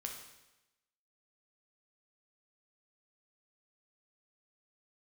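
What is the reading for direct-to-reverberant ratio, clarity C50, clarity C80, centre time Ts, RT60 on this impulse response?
1.5 dB, 5.0 dB, 7.5 dB, 35 ms, 1.0 s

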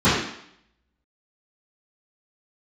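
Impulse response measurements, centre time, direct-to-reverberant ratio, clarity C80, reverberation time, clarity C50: 59 ms, -16.0 dB, 4.5 dB, 0.70 s, 1.0 dB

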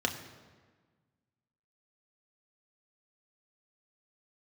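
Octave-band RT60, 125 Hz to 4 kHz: 1.9 s, 1.8 s, 1.5 s, 1.4 s, 1.3 s, 1.1 s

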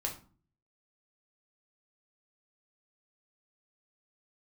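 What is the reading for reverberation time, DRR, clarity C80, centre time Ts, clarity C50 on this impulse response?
0.40 s, 0.0 dB, 15.5 dB, 18 ms, 9.5 dB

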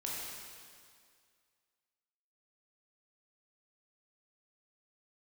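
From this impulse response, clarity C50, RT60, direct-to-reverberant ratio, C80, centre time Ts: -2.0 dB, 2.1 s, -5.0 dB, -0.5 dB, 131 ms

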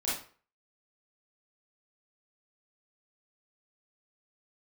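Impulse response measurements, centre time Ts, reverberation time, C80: 50 ms, 0.45 s, 8.5 dB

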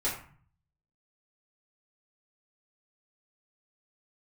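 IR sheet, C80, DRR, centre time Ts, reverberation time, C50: 10.0 dB, -8.5 dB, 33 ms, 0.45 s, 6.0 dB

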